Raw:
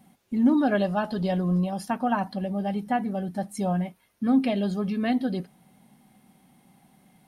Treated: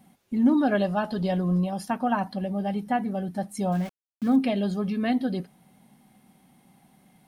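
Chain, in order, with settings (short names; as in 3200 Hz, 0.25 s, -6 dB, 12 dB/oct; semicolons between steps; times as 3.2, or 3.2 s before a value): 3.72–4.36 sample gate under -39 dBFS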